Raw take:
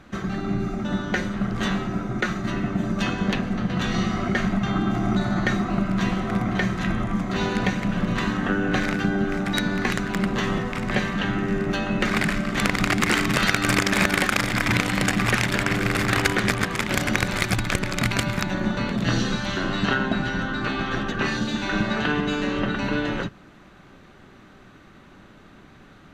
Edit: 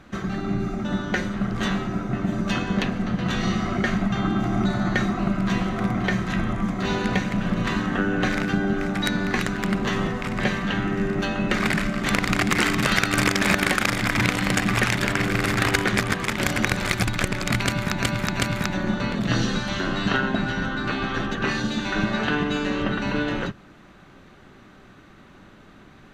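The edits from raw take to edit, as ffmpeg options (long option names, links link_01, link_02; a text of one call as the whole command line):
ffmpeg -i in.wav -filter_complex "[0:a]asplit=4[link_01][link_02][link_03][link_04];[link_01]atrim=end=2.132[link_05];[link_02]atrim=start=2.638:end=18.512[link_06];[link_03]atrim=start=18.138:end=18.512[link_07];[link_04]atrim=start=18.138[link_08];[link_05][link_06]acrossfade=duration=0.004:curve1=hsin:curve2=hsin[link_09];[link_09][link_07]acrossfade=duration=0.004:curve1=hsin:curve2=hsin[link_10];[link_10][link_08]acrossfade=duration=0.004:curve1=hsin:curve2=hsin" out.wav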